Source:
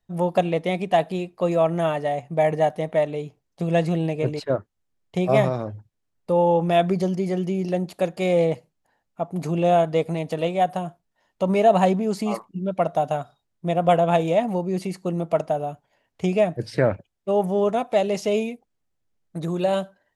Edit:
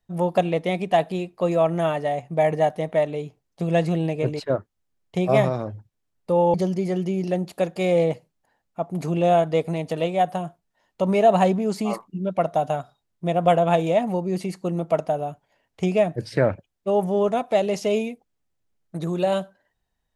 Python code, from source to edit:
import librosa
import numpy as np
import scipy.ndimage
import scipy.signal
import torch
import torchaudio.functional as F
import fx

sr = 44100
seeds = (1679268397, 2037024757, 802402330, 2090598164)

y = fx.edit(x, sr, fx.cut(start_s=6.54, length_s=0.41), tone=tone)